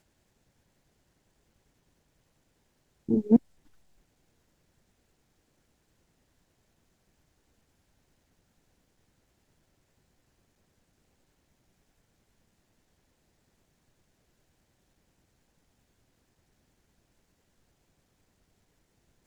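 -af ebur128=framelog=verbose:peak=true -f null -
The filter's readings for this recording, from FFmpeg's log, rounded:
Integrated loudness:
  I:         -25.2 LUFS
  Threshold: -36.5 LUFS
Loudness range:
  LRA:         1.2 LU
  Threshold: -52.6 LUFS
  LRA low:   -33.4 LUFS
  LRA high:  -32.2 LUFS
True peak:
  Peak:       -9.3 dBFS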